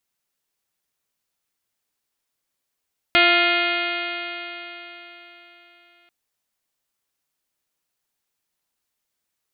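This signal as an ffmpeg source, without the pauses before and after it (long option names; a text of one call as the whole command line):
ffmpeg -f lavfi -i "aevalsrc='0.0708*pow(10,-3*t/3.99)*sin(2*PI*345.21*t)+0.1*pow(10,-3*t/3.99)*sin(2*PI*691.65*t)+0.0211*pow(10,-3*t/3.99)*sin(2*PI*1040.57*t)+0.112*pow(10,-3*t/3.99)*sin(2*PI*1393.19*t)+0.0562*pow(10,-3*t/3.99)*sin(2*PI*1750.68*t)+0.133*pow(10,-3*t/3.99)*sin(2*PI*2114.24*t)+0.112*pow(10,-3*t/3.99)*sin(2*PI*2484.99*t)+0.075*pow(10,-3*t/3.99)*sin(2*PI*2864.02*t)+0.0794*pow(10,-3*t/3.99)*sin(2*PI*3252.4*t)+0.0398*pow(10,-3*t/3.99)*sin(2*PI*3651.14*t)+0.0316*pow(10,-3*t/3.99)*sin(2*PI*4061.18*t)+0.0237*pow(10,-3*t/3.99)*sin(2*PI*4483.45*t)':duration=2.94:sample_rate=44100" out.wav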